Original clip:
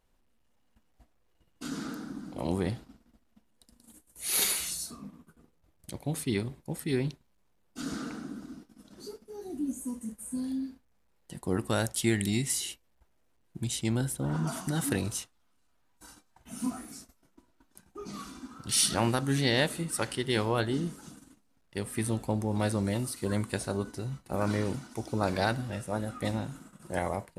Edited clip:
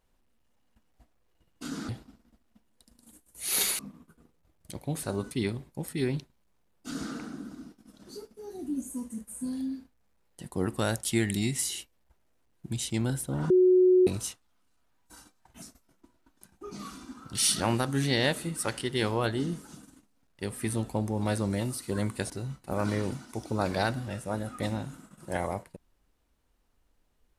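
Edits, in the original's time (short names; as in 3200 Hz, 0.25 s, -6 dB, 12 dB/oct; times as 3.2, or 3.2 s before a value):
1.89–2.7 cut
4.6–4.98 cut
14.41–14.98 bleep 367 Hz -16.5 dBFS
16.53–16.96 cut
23.64–23.92 move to 6.22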